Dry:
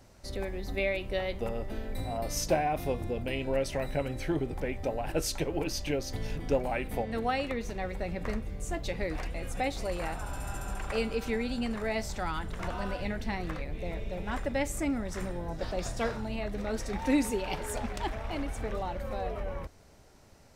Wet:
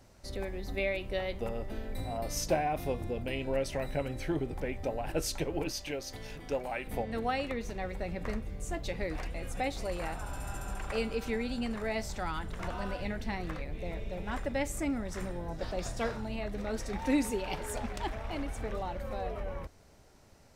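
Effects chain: 5.71–6.87 low shelf 370 Hz -9.5 dB; gain -2 dB

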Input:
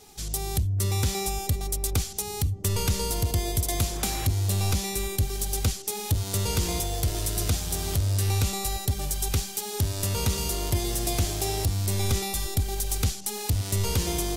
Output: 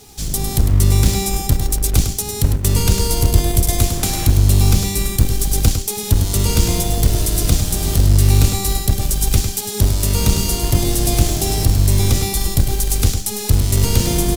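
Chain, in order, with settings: octaver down 1 oct, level 0 dB; bell 1200 Hz -4 dB 2.7 oct; in parallel at -2.5 dB: companded quantiser 4-bit; on the sum: echo 0.103 s -8 dB; gain +3.5 dB

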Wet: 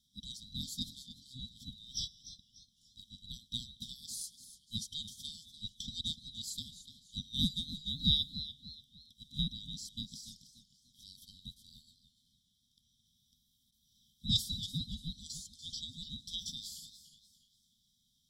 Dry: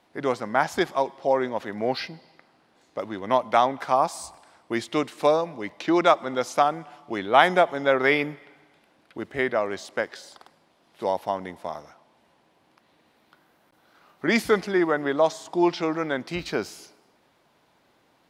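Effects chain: band inversion scrambler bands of 2000 Hz; brick-wall FIR band-stop 260–3100 Hz; warbling echo 0.292 s, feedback 37%, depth 90 cents, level -13 dB; gain -3.5 dB

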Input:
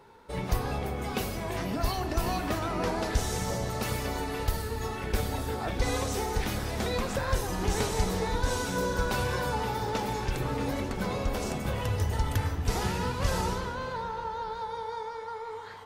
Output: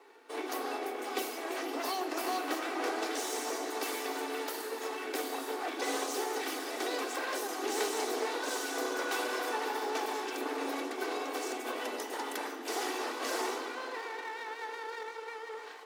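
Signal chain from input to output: minimum comb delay 2.6 ms; steep high-pass 250 Hz 96 dB/oct; gain -1 dB

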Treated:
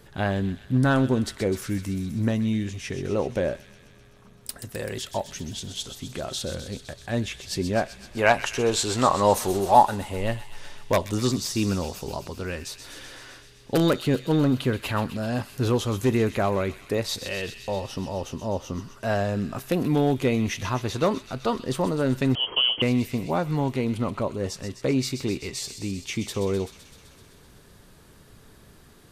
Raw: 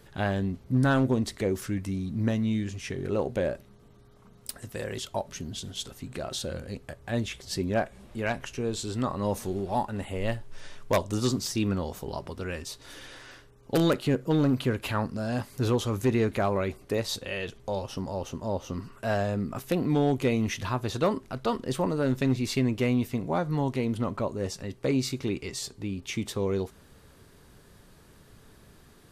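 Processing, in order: 8.17–9.94 EQ curve 230 Hz 0 dB, 850 Hz +12 dB, 1600 Hz +8 dB; on a send: thin delay 0.128 s, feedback 74%, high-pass 2500 Hz, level -9 dB; 22.35–22.82 on the sum: inverted band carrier 3200 Hz; gain +2.5 dB

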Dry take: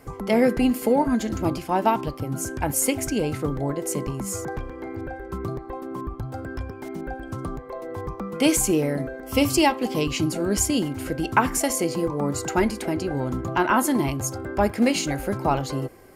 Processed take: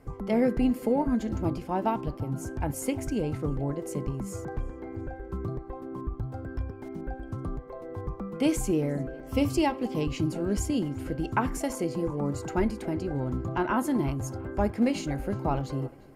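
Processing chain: tilt -2 dB/oct; tape echo 0.352 s, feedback 66%, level -22.5 dB, low-pass 5100 Hz; gain -8 dB

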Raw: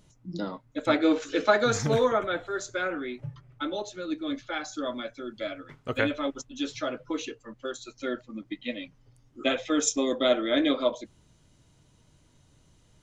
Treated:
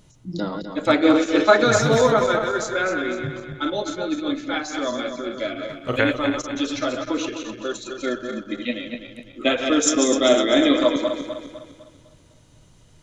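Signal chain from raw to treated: regenerating reverse delay 0.126 s, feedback 64%, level -5.5 dB; gain +6 dB

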